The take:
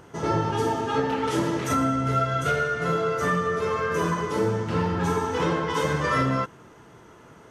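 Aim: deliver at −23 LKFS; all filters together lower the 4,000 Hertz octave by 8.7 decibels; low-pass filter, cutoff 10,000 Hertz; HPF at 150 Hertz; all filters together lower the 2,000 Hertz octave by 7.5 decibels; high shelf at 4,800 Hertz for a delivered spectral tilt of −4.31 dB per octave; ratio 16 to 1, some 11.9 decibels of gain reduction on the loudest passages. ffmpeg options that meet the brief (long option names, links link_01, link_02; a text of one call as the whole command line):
ffmpeg -i in.wav -af "highpass=150,lowpass=10000,equalizer=frequency=2000:width_type=o:gain=-8.5,equalizer=frequency=4000:width_type=o:gain=-4.5,highshelf=frequency=4800:gain=-8,acompressor=threshold=-33dB:ratio=16,volume=14.5dB" out.wav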